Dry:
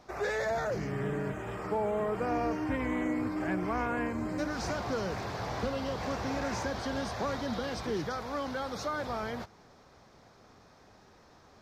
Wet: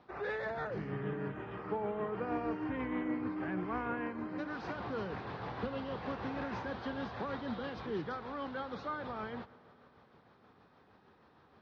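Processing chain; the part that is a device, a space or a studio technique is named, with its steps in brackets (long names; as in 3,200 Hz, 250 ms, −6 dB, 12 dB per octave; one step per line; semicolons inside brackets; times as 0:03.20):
combo amplifier with spring reverb and tremolo (spring reverb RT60 3.7 s, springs 58 ms, chirp 35 ms, DRR 18.5 dB; amplitude tremolo 6.4 Hz, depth 34%; loudspeaker in its box 83–3,500 Hz, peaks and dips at 100 Hz −3 dB, 640 Hz −6 dB, 2,200 Hz −4 dB)
0:04.01–0:04.76: low-shelf EQ 140 Hz −8.5 dB
level −2.5 dB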